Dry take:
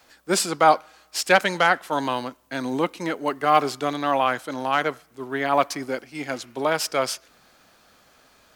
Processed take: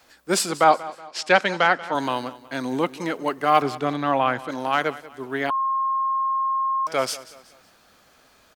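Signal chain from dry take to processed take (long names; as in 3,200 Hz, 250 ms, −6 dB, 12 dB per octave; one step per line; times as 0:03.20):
0:00.64–0:01.95: band-pass filter 120–5,100 Hz
0:03.62–0:04.49: bass and treble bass +6 dB, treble −9 dB
repeating echo 186 ms, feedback 40%, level −18 dB
0:05.50–0:06.87: beep over 1,070 Hz −20 dBFS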